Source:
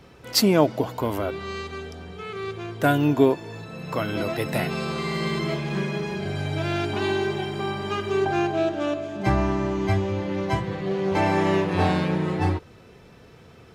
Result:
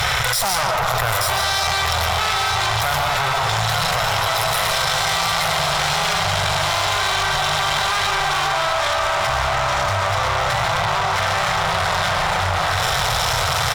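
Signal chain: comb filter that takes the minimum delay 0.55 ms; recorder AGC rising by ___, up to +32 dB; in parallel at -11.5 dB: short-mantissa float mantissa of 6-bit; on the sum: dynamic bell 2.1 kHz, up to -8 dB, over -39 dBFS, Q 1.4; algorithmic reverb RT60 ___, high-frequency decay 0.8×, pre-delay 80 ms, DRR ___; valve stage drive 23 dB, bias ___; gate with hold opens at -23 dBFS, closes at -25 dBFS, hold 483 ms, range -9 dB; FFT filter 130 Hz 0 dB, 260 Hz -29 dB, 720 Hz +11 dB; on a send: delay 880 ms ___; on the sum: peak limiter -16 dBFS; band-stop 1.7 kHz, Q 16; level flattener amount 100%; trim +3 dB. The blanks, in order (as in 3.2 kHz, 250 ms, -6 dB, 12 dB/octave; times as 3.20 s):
76 dB/s, 1.1 s, 4 dB, 0.65, -6 dB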